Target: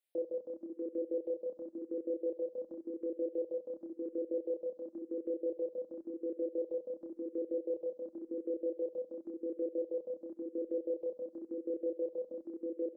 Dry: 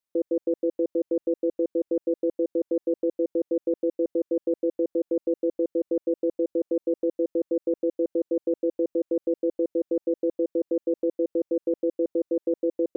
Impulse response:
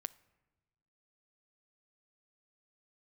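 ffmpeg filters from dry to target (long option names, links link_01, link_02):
-filter_complex "[0:a]lowshelf=frequency=180:gain=-9,alimiter=level_in=5.5dB:limit=-24dB:level=0:latency=1:release=417,volume=-5.5dB,aecho=1:1:73|146|219|292:0.133|0.068|0.0347|0.0177,asplit=2[link_01][link_02];[1:a]atrim=start_sample=2205,atrim=end_sample=3087,adelay=28[link_03];[link_02][link_03]afir=irnorm=-1:irlink=0,volume=0.5dB[link_04];[link_01][link_04]amix=inputs=2:normalize=0,asplit=2[link_05][link_06];[link_06]afreqshift=0.93[link_07];[link_05][link_07]amix=inputs=2:normalize=1,volume=1.5dB"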